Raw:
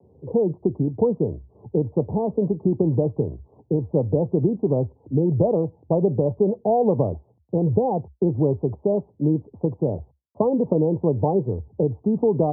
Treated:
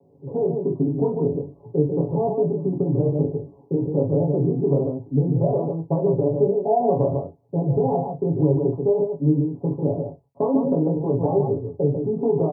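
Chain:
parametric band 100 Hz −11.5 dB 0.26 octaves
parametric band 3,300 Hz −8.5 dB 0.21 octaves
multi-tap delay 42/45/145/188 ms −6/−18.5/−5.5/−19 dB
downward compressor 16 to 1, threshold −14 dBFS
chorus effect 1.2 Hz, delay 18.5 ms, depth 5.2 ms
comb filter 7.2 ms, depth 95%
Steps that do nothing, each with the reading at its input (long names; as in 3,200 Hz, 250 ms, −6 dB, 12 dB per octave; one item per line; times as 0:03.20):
parametric band 3,300 Hz: nothing at its input above 1,000 Hz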